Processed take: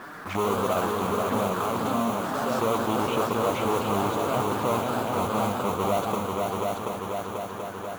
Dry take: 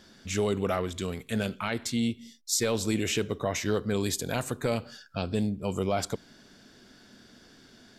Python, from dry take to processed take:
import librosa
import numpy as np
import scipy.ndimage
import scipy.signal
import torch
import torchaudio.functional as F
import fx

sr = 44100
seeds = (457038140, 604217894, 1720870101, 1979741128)

p1 = fx.halfwave_hold(x, sr)
p2 = fx.tilt_eq(p1, sr, slope=-2.5)
p3 = fx.level_steps(p2, sr, step_db=20)
p4 = p2 + (p3 * librosa.db_to_amplitude(1.5))
p5 = fx.bandpass_q(p4, sr, hz=1200.0, q=2.6)
p6 = fx.mod_noise(p5, sr, seeds[0], snr_db=17)
p7 = fx.env_flanger(p6, sr, rest_ms=9.3, full_db=-37.5)
p8 = fx.echo_heads(p7, sr, ms=244, heads='second and third', feedback_pct=50, wet_db=-6.5)
p9 = fx.echo_pitch(p8, sr, ms=133, semitones=2, count=3, db_per_echo=-6.0)
p10 = fx.env_flatten(p9, sr, amount_pct=50)
y = p10 * librosa.db_to_amplitude(4.0)